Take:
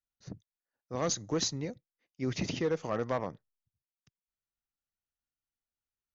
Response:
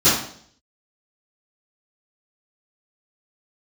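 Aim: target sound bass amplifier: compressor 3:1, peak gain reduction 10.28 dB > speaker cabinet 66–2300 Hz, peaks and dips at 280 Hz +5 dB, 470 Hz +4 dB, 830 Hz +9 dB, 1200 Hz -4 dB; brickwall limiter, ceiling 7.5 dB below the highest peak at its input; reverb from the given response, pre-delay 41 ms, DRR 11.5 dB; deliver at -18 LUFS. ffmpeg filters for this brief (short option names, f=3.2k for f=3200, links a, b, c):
-filter_complex "[0:a]alimiter=level_in=4dB:limit=-24dB:level=0:latency=1,volume=-4dB,asplit=2[a][b];[1:a]atrim=start_sample=2205,adelay=41[c];[b][c]afir=irnorm=-1:irlink=0,volume=-32.5dB[d];[a][d]amix=inputs=2:normalize=0,acompressor=threshold=-43dB:ratio=3,highpass=f=66:w=0.5412,highpass=f=66:w=1.3066,equalizer=f=280:t=q:w=4:g=5,equalizer=f=470:t=q:w=4:g=4,equalizer=f=830:t=q:w=4:g=9,equalizer=f=1.2k:t=q:w=4:g=-4,lowpass=f=2.3k:w=0.5412,lowpass=f=2.3k:w=1.3066,volume=26.5dB"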